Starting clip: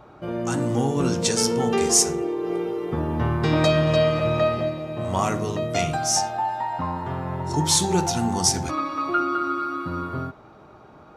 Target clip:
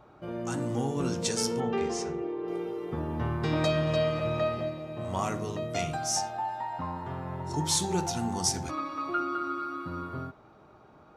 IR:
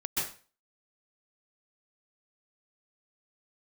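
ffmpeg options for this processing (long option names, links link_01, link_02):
-filter_complex "[0:a]asettb=1/sr,asplit=3[link_01][link_02][link_03];[link_01]atrim=end=1.604[link_04];[link_02]atrim=start=1.6:end=2.48,asetpts=PTS-STARTPTS,afade=type=in:duration=0.004:curve=qsin,afade=type=out:start_time=0.876:duration=0.004:curve=qsin,lowpass=3000[link_05];[link_03]atrim=start=2.476[link_06];[link_04][link_05]acrossfade=duration=0.004:curve1=hsin:curve2=qsin[link_07];[link_07][link_06]acrossfade=duration=0.004:curve1=qsin:curve2=hsin,volume=-7.5dB"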